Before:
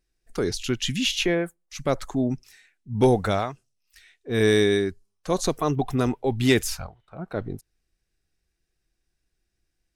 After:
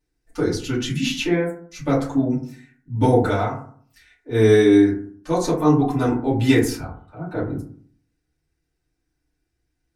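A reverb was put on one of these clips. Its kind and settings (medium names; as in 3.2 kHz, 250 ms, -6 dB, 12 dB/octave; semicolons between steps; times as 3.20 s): FDN reverb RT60 0.52 s, low-frequency decay 1.25×, high-frequency decay 0.35×, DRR -8.5 dB; trim -6.5 dB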